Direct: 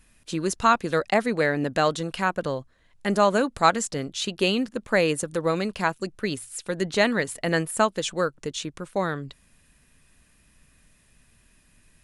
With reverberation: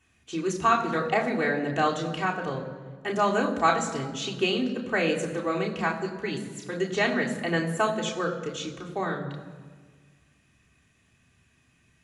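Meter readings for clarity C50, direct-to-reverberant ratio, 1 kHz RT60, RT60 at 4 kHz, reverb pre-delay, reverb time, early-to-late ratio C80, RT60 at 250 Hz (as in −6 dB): 9.0 dB, −1.5 dB, 1.5 s, 1.1 s, 3 ms, 1.5 s, 10.5 dB, 1.9 s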